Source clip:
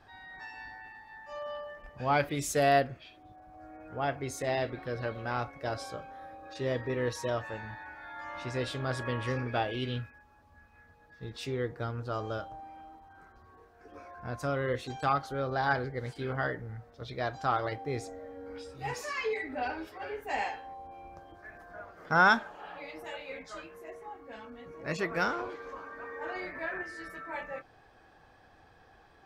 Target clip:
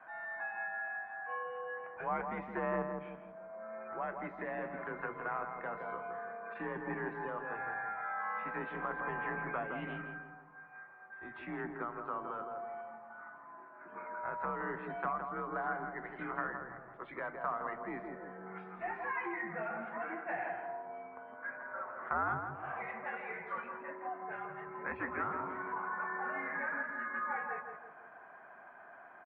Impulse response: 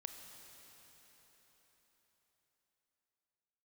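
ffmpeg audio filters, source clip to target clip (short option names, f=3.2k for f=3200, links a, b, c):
-filter_complex "[0:a]acrossover=split=380[a][b];[a]aeval=exprs='0.0596*(cos(1*acos(clip(val(0)/0.0596,-1,1)))-cos(1*PI/2))+0.00668*(cos(3*acos(clip(val(0)/0.0596,-1,1)))-cos(3*PI/2))+0.00531*(cos(6*acos(clip(val(0)/0.0596,-1,1)))-cos(6*PI/2))':c=same[c];[b]acompressor=threshold=-42dB:ratio=6[d];[c][d]amix=inputs=2:normalize=0,lowshelf=f=730:t=q:w=1.5:g=-8.5,asplit=2[e][f];[f]adelay=165,lowpass=f=1.3k:p=1,volume=-4dB,asplit=2[g][h];[h]adelay=165,lowpass=f=1.3k:p=1,volume=0.48,asplit=2[i][j];[j]adelay=165,lowpass=f=1.3k:p=1,volume=0.48,asplit=2[k][l];[l]adelay=165,lowpass=f=1.3k:p=1,volume=0.48,asplit=2[m][n];[n]adelay=165,lowpass=f=1.3k:p=1,volume=0.48,asplit=2[o][p];[p]adelay=165,lowpass=f=1.3k:p=1,volume=0.48[q];[e][g][i][k][m][o][q]amix=inputs=7:normalize=0,highpass=f=250:t=q:w=0.5412,highpass=f=250:t=q:w=1.307,lowpass=f=2.2k:t=q:w=0.5176,lowpass=f=2.2k:t=q:w=0.7071,lowpass=f=2.2k:t=q:w=1.932,afreqshift=-92,volume=6.5dB"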